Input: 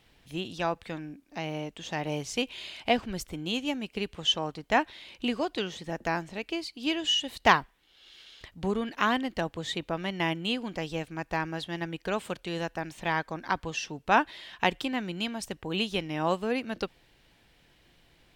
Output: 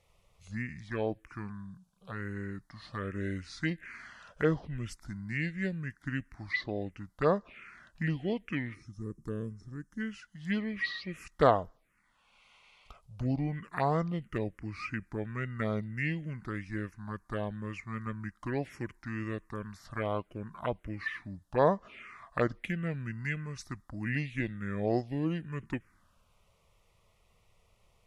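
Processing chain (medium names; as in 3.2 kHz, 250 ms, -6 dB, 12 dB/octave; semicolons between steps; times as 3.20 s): time-frequency box 5.72–6.54 s, 810–7800 Hz -14 dB; touch-sensitive phaser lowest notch 410 Hz, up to 3.7 kHz, full sweep at -22 dBFS; wide varispeed 0.654×; trim -2 dB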